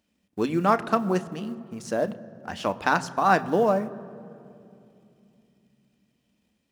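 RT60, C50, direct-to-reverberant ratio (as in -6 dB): 2.7 s, 17.5 dB, 11.0 dB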